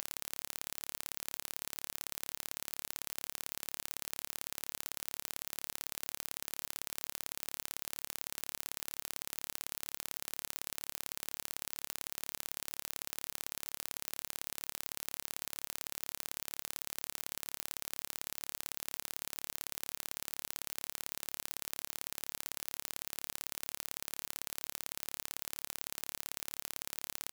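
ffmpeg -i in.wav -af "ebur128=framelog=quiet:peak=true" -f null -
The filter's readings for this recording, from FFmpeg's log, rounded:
Integrated loudness:
  I:         -40.7 LUFS
  Threshold: -50.7 LUFS
Loudness range:
  LRA:         0.1 LU
  Threshold: -60.7 LUFS
  LRA low:   -40.7 LUFS
  LRA high:  -40.7 LUFS
True peak:
  Peak:      -10.9 dBFS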